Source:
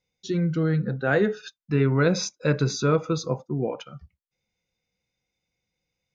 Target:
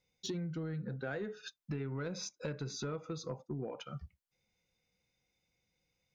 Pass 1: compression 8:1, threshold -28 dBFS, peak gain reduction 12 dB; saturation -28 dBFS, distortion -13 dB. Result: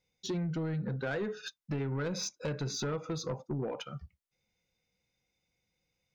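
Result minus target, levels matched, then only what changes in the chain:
compression: peak gain reduction -7 dB
change: compression 8:1, threshold -36 dBFS, peak gain reduction 19 dB

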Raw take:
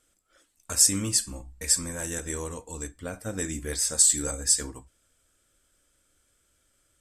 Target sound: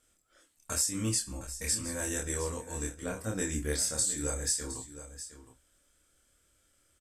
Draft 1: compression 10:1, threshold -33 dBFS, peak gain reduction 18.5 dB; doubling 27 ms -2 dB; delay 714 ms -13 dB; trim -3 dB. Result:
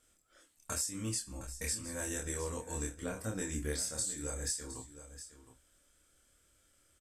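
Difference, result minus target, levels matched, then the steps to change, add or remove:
compression: peak gain reduction +6.5 dB
change: compression 10:1, threshold -25.5 dBFS, peak gain reduction 12 dB

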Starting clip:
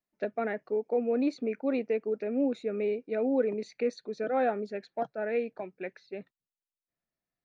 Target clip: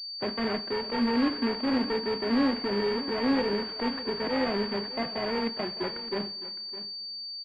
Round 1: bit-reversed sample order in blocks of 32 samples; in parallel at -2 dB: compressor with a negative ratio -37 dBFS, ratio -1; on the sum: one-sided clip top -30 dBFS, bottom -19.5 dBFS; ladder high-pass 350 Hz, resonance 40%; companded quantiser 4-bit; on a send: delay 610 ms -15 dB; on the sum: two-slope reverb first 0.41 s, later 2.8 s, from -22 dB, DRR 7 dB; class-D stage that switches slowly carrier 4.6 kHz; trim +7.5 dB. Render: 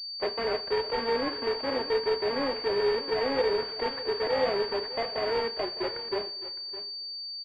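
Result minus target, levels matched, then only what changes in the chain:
250 Hz band -10.5 dB
change: ladder high-pass 160 Hz, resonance 40%

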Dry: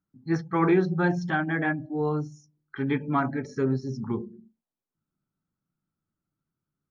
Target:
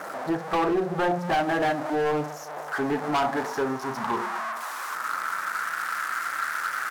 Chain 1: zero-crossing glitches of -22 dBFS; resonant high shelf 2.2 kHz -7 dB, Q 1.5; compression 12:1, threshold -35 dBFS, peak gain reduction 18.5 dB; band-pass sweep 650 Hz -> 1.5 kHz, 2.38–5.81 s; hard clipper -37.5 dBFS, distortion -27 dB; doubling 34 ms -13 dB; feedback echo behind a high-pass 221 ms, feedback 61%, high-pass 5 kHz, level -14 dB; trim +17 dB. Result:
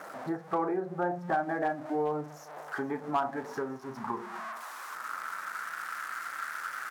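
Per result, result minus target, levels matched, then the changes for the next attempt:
compression: peak gain reduction +9.5 dB; zero-crossing glitches: distortion -8 dB
change: compression 12:1, threshold -24.5 dBFS, peak gain reduction 9 dB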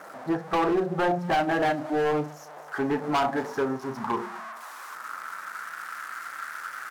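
zero-crossing glitches: distortion -8 dB
change: zero-crossing glitches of -14 dBFS

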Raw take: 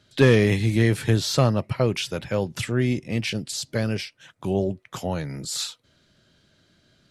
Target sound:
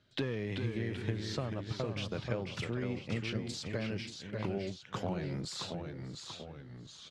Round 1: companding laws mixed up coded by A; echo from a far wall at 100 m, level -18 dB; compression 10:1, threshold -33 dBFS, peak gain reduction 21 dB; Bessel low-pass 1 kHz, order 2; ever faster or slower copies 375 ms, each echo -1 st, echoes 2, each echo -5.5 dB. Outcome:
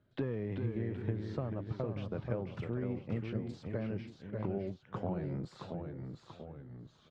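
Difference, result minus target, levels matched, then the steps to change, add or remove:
4 kHz band -15.5 dB
change: Bessel low-pass 3.9 kHz, order 2

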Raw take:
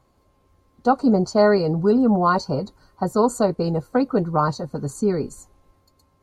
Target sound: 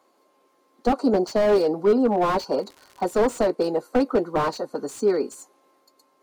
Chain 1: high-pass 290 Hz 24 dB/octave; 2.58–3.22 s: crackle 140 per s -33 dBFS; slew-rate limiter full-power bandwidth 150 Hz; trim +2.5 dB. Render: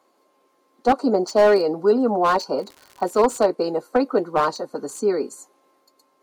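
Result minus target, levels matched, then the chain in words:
slew-rate limiter: distortion -9 dB
high-pass 290 Hz 24 dB/octave; 2.58–3.22 s: crackle 140 per s -33 dBFS; slew-rate limiter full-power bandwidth 66 Hz; trim +2.5 dB

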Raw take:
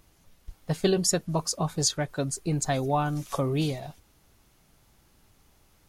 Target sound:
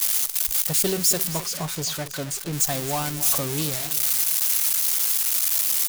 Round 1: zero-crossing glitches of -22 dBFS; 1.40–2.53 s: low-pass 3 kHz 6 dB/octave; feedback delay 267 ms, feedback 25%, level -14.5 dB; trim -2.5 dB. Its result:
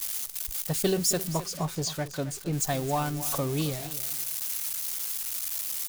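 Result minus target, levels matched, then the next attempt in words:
zero-crossing glitches: distortion -10 dB
zero-crossing glitches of -11.5 dBFS; 1.40–2.53 s: low-pass 3 kHz 6 dB/octave; feedback delay 267 ms, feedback 25%, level -14.5 dB; trim -2.5 dB

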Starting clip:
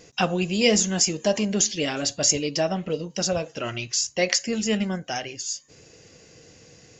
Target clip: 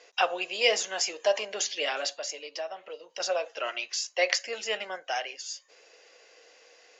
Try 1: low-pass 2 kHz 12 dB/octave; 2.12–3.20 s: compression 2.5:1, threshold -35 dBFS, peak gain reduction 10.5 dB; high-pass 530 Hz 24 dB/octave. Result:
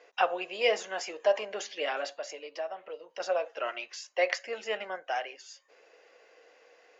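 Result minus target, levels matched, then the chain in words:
4 kHz band -5.0 dB
low-pass 4.1 kHz 12 dB/octave; 2.12–3.20 s: compression 2.5:1, threshold -35 dBFS, peak gain reduction 10.5 dB; high-pass 530 Hz 24 dB/octave

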